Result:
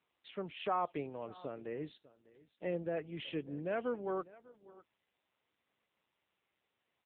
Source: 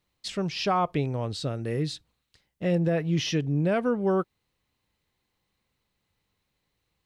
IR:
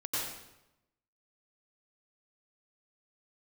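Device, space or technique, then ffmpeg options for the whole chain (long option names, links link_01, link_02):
satellite phone: -af "highpass=300,lowpass=3400,aecho=1:1:600:0.0944,volume=-8dB" -ar 8000 -c:a libopencore_amrnb -b:a 6700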